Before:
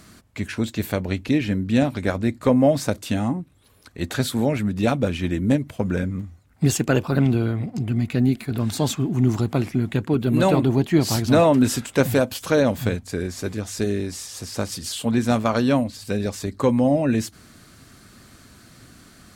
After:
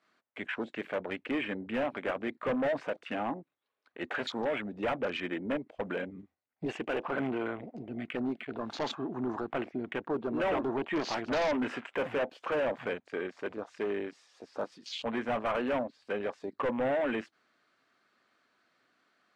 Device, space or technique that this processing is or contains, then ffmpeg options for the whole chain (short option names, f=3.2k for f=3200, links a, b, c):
walkie-talkie: -filter_complex "[0:a]highpass=530,lowpass=2.9k,asoftclip=type=hard:threshold=-27dB,agate=range=-6dB:threshold=-58dB:ratio=16:detection=peak,afwtdn=0.01,asettb=1/sr,asplit=3[a][b][c];[a]atrim=end=5.934[d];[b]atrim=start=5.93:end=7.06,asetpts=PTS-STARTPTS,afade=t=in:d=0.004:c=qsin,afade=t=out:st=1.126:d=0.004:c=qsin,equalizer=f=1.3k:t=o:w=0.77:g=-5.5[e];[c]atrim=start=7.056[f];[d][e]acrossfade=d=0.004:c1=hsin:c2=qsin[g];[g][f]acrossfade=d=0.004:c1=qsin:c2=hsin"